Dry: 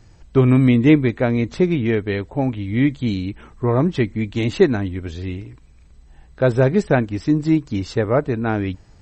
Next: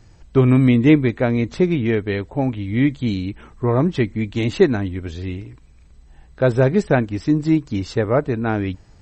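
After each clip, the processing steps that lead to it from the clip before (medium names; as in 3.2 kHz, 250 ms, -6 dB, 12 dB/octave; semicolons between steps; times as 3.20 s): no audible change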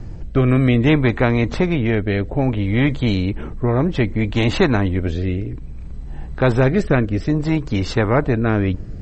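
tilt EQ -3.5 dB/octave; rotary cabinet horn 0.6 Hz; spectrum-flattening compressor 2:1; trim -5.5 dB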